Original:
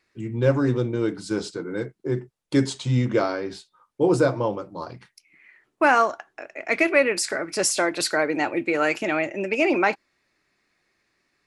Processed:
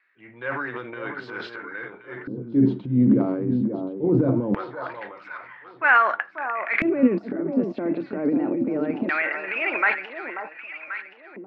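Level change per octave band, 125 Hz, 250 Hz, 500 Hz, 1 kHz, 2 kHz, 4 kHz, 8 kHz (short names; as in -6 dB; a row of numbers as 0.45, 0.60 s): -2.0 dB, +3.5 dB, -4.5 dB, -0.5 dB, +1.5 dB, under -10 dB, under -40 dB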